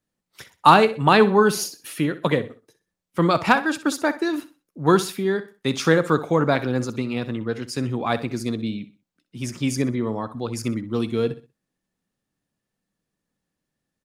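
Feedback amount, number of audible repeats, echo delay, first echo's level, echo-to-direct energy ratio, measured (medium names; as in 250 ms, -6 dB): 31%, 2, 63 ms, -15.0 dB, -14.5 dB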